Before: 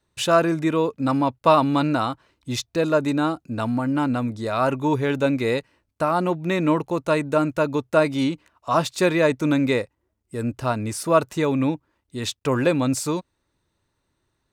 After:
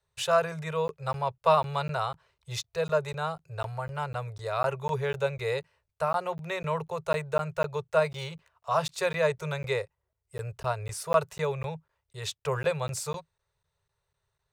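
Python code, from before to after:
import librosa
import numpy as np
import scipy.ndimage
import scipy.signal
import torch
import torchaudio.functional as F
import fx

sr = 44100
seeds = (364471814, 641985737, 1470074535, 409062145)

y = fx.median_filter(x, sr, points=3, at=(7.14, 8.77))
y = scipy.signal.sosfilt(scipy.signal.cheby1(4, 1.0, [160.0, 400.0], 'bandstop', fs=sr, output='sos'), y)
y = fx.buffer_crackle(y, sr, first_s=0.88, period_s=0.25, block=512, kind='zero')
y = F.gain(torch.from_numpy(y), -5.5).numpy()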